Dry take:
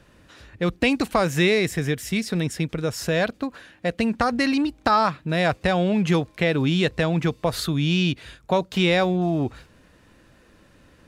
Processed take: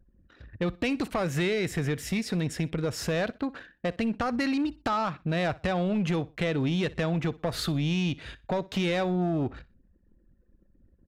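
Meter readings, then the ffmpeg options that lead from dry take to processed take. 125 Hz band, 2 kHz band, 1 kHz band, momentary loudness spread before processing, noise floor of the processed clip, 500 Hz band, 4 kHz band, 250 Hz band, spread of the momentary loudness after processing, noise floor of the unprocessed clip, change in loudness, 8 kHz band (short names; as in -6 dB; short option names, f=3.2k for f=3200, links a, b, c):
-5.0 dB, -8.0 dB, -8.0 dB, 7 LU, -64 dBFS, -6.5 dB, -8.0 dB, -5.5 dB, 6 LU, -56 dBFS, -6.5 dB, -5.5 dB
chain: -af "bandreject=f=1k:w=21,anlmdn=0.0631,highshelf=f=5.1k:g=-7,acompressor=threshold=-25dB:ratio=3,asoftclip=type=tanh:threshold=-22dB,aecho=1:1:61|122:0.0891|0.0258,volume=1.5dB"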